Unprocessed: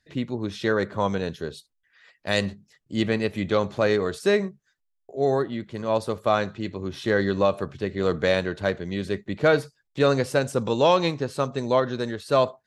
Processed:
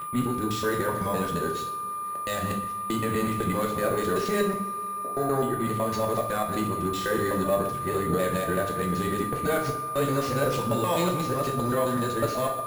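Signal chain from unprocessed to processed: local time reversal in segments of 0.126 s; gate -47 dBFS, range -10 dB; bell 120 Hz +8.5 dB 0.24 oct; limiter -18.5 dBFS, peak gain reduction 11.5 dB; whine 1200 Hz -33 dBFS; tube stage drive 16 dB, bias 0.3; careless resampling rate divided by 4×, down none, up hold; two-slope reverb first 0.54 s, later 3.9 s, from -21 dB, DRR 0.5 dB; gain +1.5 dB

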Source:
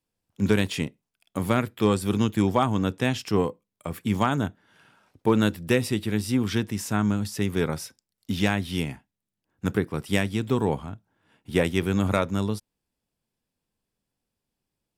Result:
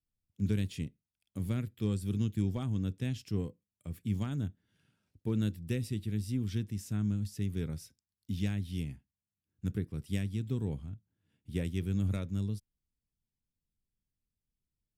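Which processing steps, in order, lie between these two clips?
passive tone stack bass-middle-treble 10-0-1; gain +7 dB

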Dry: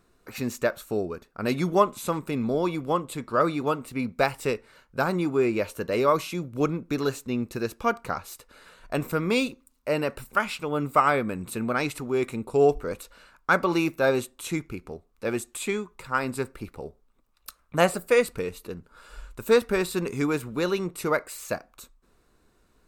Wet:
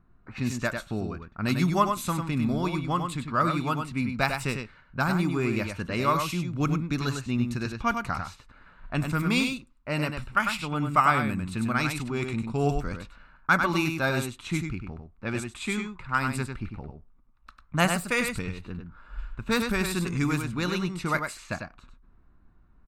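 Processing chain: bell 470 Hz -15 dB 0.99 oct; echo 99 ms -6 dB; low-pass opened by the level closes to 1200 Hz, open at -26 dBFS; low shelf 210 Hz +6 dB; gain +1.5 dB

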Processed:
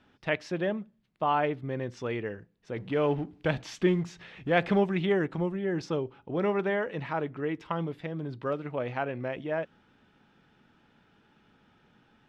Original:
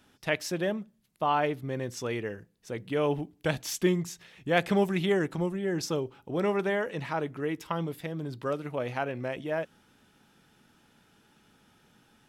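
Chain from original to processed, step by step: 2.76–4.8 G.711 law mismatch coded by mu; LPF 3100 Hz 12 dB/oct

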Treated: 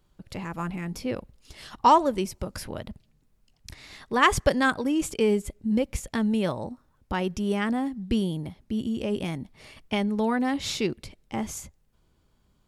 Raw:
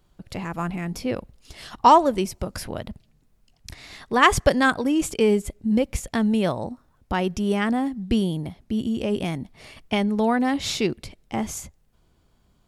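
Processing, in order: notch 700 Hz, Q 12; gain -3.5 dB

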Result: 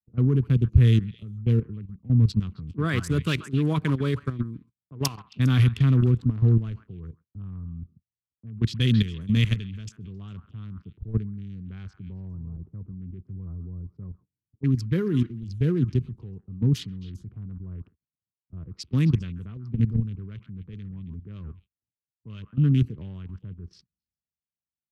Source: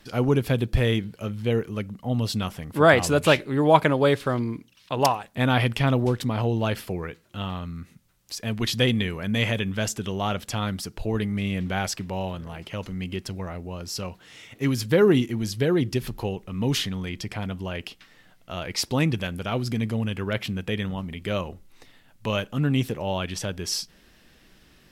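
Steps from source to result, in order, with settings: Wiener smoothing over 25 samples; band shelf 690 Hz -12.5 dB 1 oct; low-pass opened by the level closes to 340 Hz, open at -20.5 dBFS; in parallel at -2.5 dB: compressor 16:1, threshold -36 dBFS, peak gain reduction 22.5 dB; on the sum: HPF 63 Hz 24 dB/oct; on a send: delay with a stepping band-pass 0.135 s, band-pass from 1200 Hz, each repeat 1.4 oct, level -9 dB; on the sum: level quantiser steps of 12 dB; gate -50 dBFS, range -24 dB; tone controls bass +13 dB, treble +3 dB; three-band expander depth 70%; gain -5.5 dB

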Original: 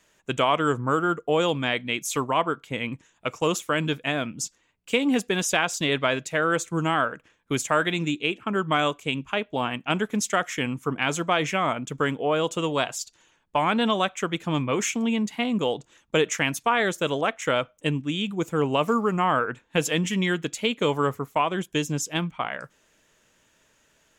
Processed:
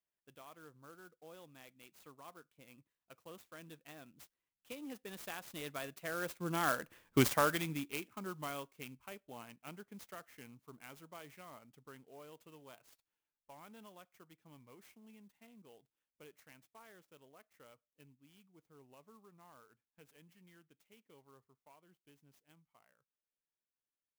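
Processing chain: Doppler pass-by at 7.07, 16 m/s, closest 1.9 m; clock jitter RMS 0.041 ms; gain +1.5 dB

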